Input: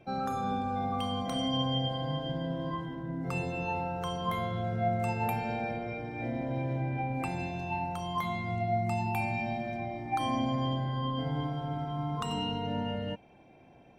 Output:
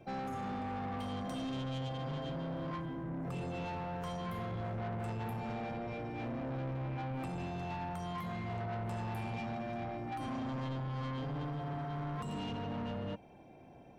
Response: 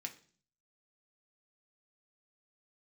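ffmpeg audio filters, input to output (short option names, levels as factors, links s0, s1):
-filter_complex "[0:a]equalizer=f=2600:t=o:w=1.6:g=-5.5,acrossover=split=390[s0][s1];[s1]alimiter=level_in=2.37:limit=0.0631:level=0:latency=1:release=346,volume=0.422[s2];[s0][s2]amix=inputs=2:normalize=0,asoftclip=type=tanh:threshold=0.0133,volume=1.19"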